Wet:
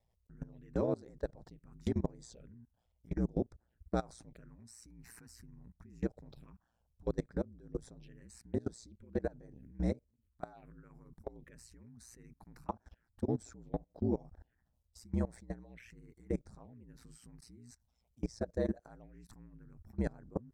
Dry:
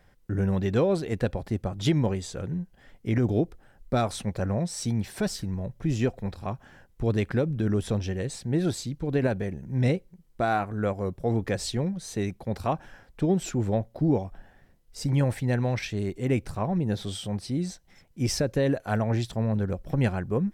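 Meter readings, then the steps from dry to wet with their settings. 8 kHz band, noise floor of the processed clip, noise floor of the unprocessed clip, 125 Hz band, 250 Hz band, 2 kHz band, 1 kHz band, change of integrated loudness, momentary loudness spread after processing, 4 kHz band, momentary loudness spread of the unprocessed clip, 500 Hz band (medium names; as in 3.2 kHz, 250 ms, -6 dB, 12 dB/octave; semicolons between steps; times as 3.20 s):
-18.5 dB, -79 dBFS, -60 dBFS, -16.5 dB, -12.5 dB, -19.5 dB, -16.0 dB, -11.5 dB, 21 LU, -23.0 dB, 8 LU, -12.5 dB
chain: level held to a coarse grid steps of 23 dB; touch-sensitive phaser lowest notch 250 Hz, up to 2.9 kHz, full sweep at -33.5 dBFS; ring modulator 59 Hz; trim -4.5 dB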